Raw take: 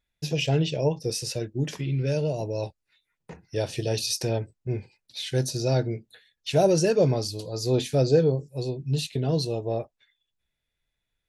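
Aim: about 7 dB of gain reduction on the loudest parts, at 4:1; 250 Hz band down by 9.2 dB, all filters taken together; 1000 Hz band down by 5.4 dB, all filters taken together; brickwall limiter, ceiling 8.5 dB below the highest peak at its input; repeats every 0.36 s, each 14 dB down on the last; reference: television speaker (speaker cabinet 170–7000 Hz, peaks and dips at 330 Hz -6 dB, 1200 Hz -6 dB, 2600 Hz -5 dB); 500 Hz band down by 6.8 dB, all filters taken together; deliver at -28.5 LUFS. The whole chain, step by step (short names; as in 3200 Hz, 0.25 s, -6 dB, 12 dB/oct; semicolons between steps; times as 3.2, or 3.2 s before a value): bell 250 Hz -7.5 dB; bell 500 Hz -4 dB; bell 1000 Hz -4 dB; compressor 4:1, threshold -29 dBFS; limiter -27.5 dBFS; speaker cabinet 170–7000 Hz, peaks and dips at 330 Hz -6 dB, 1200 Hz -6 dB, 2600 Hz -5 dB; feedback echo 0.36 s, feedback 20%, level -14 dB; gain +11.5 dB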